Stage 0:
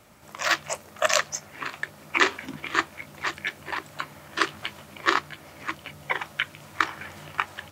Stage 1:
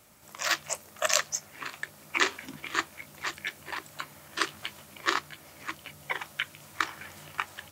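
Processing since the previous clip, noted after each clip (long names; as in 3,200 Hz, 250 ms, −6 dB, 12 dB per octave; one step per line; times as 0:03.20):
high-shelf EQ 4,700 Hz +10.5 dB
level −6.5 dB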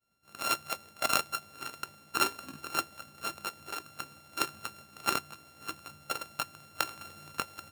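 samples sorted by size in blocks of 32 samples
downward expander −47 dBFS
level −2.5 dB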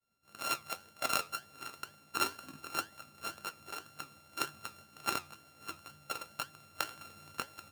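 flanger 2 Hz, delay 6.1 ms, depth 5.9 ms, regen +75%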